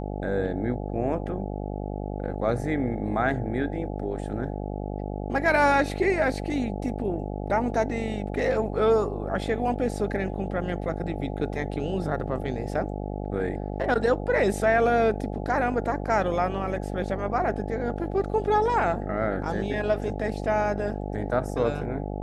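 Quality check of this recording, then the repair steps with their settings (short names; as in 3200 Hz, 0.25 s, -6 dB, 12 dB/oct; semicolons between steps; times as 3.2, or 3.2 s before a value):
buzz 50 Hz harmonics 17 -32 dBFS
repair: de-hum 50 Hz, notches 17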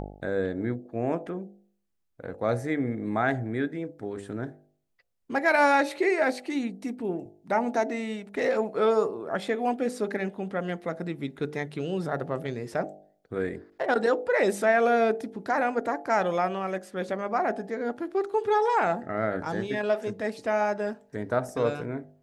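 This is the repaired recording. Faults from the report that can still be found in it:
none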